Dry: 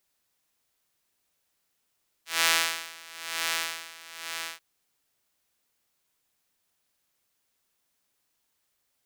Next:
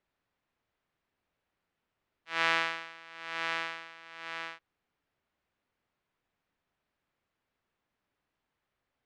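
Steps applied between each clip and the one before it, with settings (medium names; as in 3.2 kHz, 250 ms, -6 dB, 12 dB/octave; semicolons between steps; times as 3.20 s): low-pass 2.2 kHz 12 dB/octave; bass shelf 240 Hz +4 dB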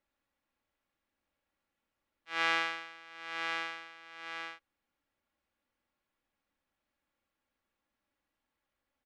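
comb 3.6 ms, depth 50%; trim -3 dB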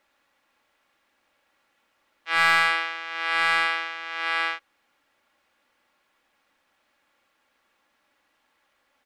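overdrive pedal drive 17 dB, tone 4.3 kHz, clips at -14.5 dBFS; trim +7.5 dB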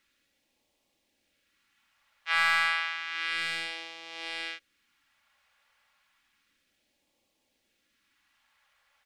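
compression 2:1, threshold -24 dBFS, peak gain reduction 6 dB; phase shifter stages 2, 0.31 Hz, lowest notch 310–1400 Hz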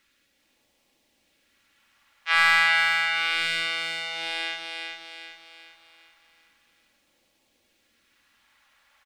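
feedback delay 393 ms, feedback 45%, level -5 dB; reverberation RT60 1.9 s, pre-delay 68 ms, DRR 13 dB; trim +5.5 dB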